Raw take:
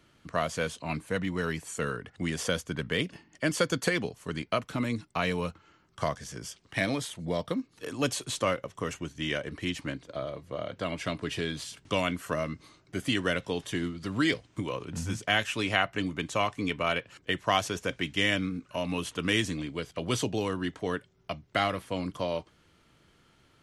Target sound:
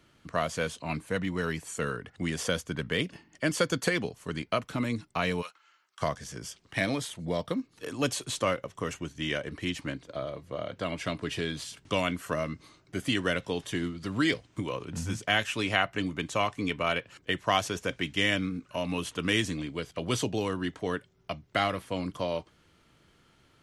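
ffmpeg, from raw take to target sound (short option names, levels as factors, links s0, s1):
-filter_complex "[0:a]asplit=3[s0][s1][s2];[s0]afade=t=out:st=5.41:d=0.02[s3];[s1]highpass=1200,afade=t=in:st=5.41:d=0.02,afade=t=out:st=6:d=0.02[s4];[s2]afade=t=in:st=6:d=0.02[s5];[s3][s4][s5]amix=inputs=3:normalize=0"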